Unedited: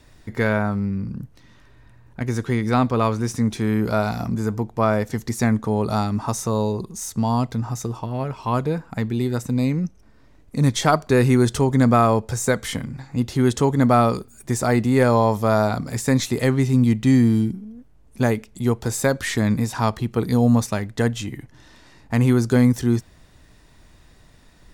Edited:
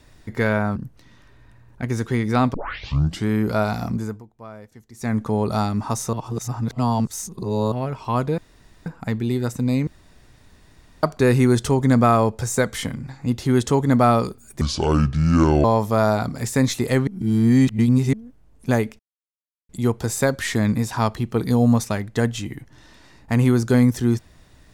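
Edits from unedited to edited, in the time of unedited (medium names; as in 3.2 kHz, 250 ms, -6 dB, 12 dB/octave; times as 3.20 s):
0.76–1.14 s: delete
2.92 s: tape start 0.73 s
4.31–5.61 s: dip -20 dB, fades 0.30 s
6.51–8.10 s: reverse
8.76 s: insert room tone 0.48 s
9.77–10.93 s: room tone
14.51–15.16 s: speed 63%
16.59–17.65 s: reverse
18.51 s: insert silence 0.70 s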